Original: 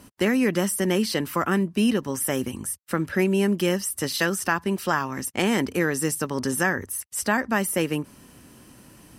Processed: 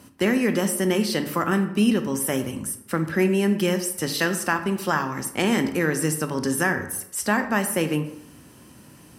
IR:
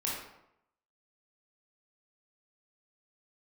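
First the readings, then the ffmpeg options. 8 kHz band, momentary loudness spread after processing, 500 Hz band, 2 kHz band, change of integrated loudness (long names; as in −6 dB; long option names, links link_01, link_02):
+0.5 dB, 6 LU, +1.0 dB, +0.5 dB, +1.0 dB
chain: -filter_complex "[0:a]highpass=86,asplit=2[link_01][link_02];[1:a]atrim=start_sample=2205,lowshelf=frequency=140:gain=11.5[link_03];[link_02][link_03]afir=irnorm=-1:irlink=0,volume=-10dB[link_04];[link_01][link_04]amix=inputs=2:normalize=0,volume=-2dB"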